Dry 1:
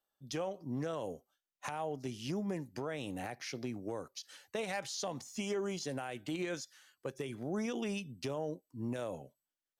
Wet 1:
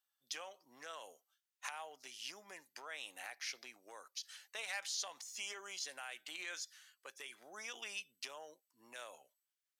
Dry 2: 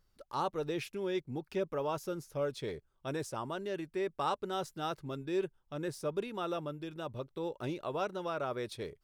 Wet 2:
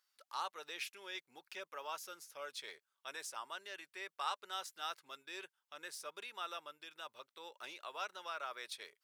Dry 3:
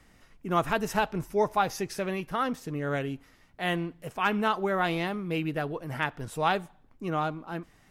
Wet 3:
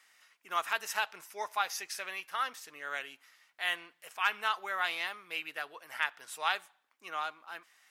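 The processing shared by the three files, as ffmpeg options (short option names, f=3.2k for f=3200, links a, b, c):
-af "highpass=1.4k,volume=1dB"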